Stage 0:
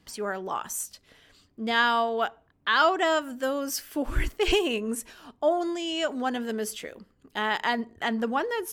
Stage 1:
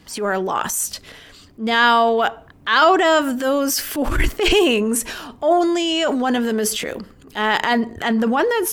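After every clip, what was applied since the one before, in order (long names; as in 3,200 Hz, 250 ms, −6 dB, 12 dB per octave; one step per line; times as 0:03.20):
transient designer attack −9 dB, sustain +6 dB
in parallel at −0.5 dB: downward compressor, threshold −34 dBFS, peak gain reduction 14.5 dB
on the sum: level +7.5 dB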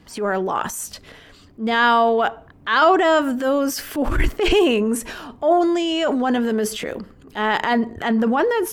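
high-shelf EQ 2,600 Hz −8 dB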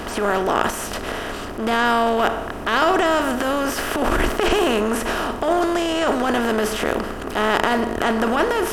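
compressor on every frequency bin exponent 0.4
level −6.5 dB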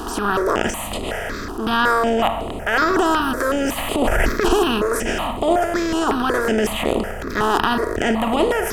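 step-sequenced phaser 5.4 Hz 570–5,600 Hz
level +4 dB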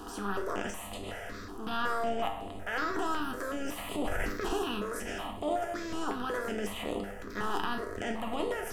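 tuned comb filter 99 Hz, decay 0.34 s, harmonics all, mix 80%
on a send at −14.5 dB: convolution reverb RT60 0.75 s, pre-delay 4 ms
on the sum: level −7 dB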